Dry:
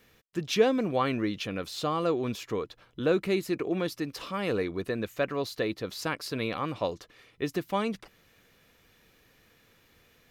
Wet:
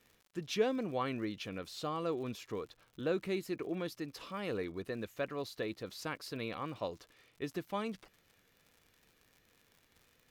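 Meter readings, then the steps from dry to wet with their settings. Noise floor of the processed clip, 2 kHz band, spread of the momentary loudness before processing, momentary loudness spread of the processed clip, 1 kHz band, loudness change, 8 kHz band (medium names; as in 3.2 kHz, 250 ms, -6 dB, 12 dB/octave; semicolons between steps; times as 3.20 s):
-71 dBFS, -8.5 dB, 9 LU, 9 LU, -8.5 dB, -8.5 dB, -8.5 dB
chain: crackle 96 per s -42 dBFS; wow and flutter 28 cents; trim -8.5 dB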